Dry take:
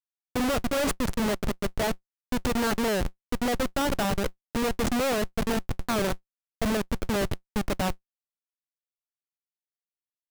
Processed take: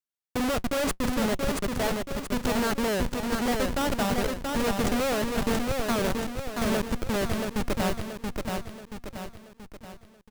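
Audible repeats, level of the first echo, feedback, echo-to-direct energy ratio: 5, −4.0 dB, 47%, −3.0 dB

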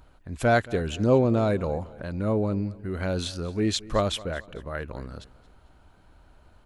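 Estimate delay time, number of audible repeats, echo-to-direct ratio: 224 ms, 2, −19.5 dB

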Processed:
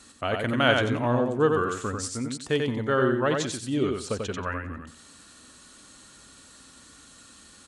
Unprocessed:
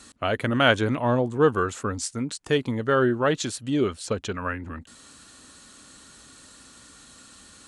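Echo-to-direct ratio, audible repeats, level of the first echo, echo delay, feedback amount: −4.0 dB, 3, −4.0 dB, 91 ms, 22%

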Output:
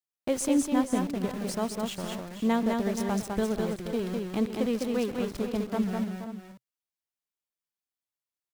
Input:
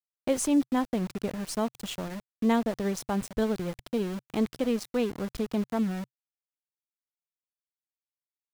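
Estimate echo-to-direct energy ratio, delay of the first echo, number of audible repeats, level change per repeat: −2.5 dB, 133 ms, 4, repeats not evenly spaced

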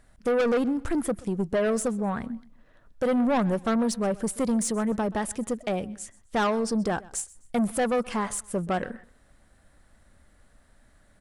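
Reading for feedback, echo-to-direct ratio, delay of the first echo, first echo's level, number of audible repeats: 31%, −21.0 dB, 128 ms, −21.5 dB, 2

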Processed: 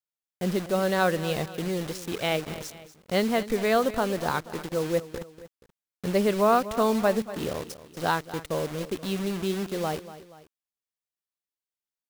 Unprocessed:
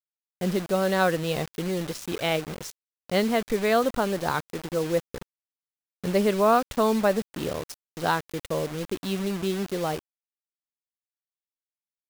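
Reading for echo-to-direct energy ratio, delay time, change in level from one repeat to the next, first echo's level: −14.0 dB, 239 ms, −6.5 dB, −15.0 dB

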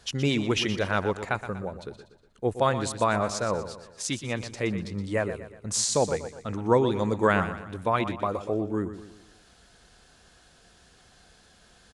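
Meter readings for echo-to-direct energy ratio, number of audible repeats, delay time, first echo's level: −10.5 dB, 4, 121 ms, −11.5 dB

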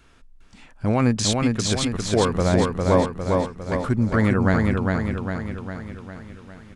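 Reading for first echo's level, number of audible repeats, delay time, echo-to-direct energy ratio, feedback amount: −3.0 dB, 7, 404 ms, −1.5 dB, 56%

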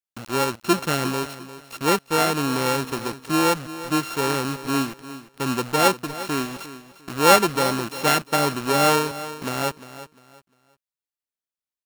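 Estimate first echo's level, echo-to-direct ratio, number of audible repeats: −14.5 dB, −14.0 dB, 2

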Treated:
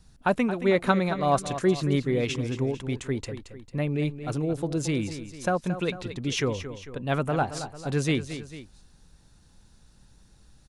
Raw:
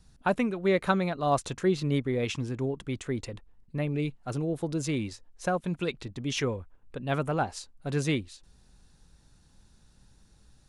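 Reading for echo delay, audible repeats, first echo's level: 224 ms, 2, −11.5 dB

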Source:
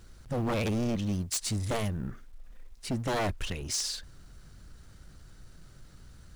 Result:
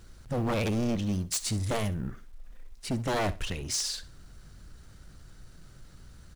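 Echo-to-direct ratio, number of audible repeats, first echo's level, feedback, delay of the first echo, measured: −17.0 dB, 2, −17.0 dB, 25%, 63 ms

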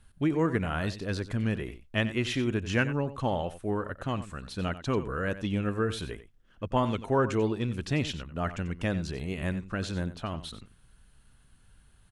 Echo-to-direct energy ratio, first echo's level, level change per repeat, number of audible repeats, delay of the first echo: −13.5 dB, −13.5 dB, repeats not evenly spaced, 1, 91 ms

